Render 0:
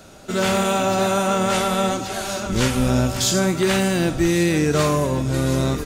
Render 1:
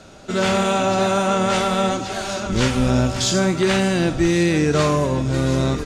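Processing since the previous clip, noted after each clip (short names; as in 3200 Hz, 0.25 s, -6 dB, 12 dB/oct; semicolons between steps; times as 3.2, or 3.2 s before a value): LPF 7000 Hz 12 dB/oct; gain +1 dB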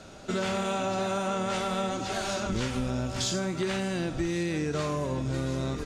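compressor 6:1, threshold -23 dBFS, peak gain reduction 10 dB; gain -3.5 dB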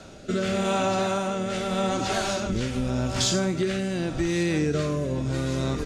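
rotary speaker horn 0.85 Hz; gain +6 dB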